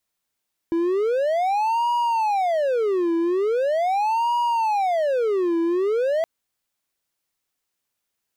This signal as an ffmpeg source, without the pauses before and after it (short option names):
-f lavfi -i "aevalsrc='0.15*(1-4*abs(mod((645*t-312/(2*PI*0.41)*sin(2*PI*0.41*t))+0.25,1)-0.5))':d=5.52:s=44100"